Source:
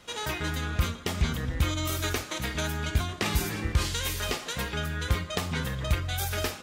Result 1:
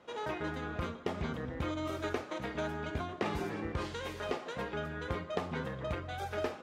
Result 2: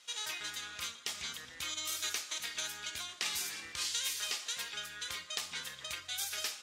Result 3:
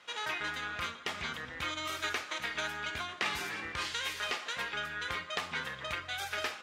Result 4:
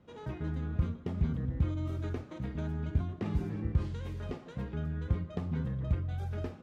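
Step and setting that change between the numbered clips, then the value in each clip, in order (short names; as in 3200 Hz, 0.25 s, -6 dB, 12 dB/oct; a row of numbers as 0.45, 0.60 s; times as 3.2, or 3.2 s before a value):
band-pass, frequency: 520, 6000, 1800, 150 Hz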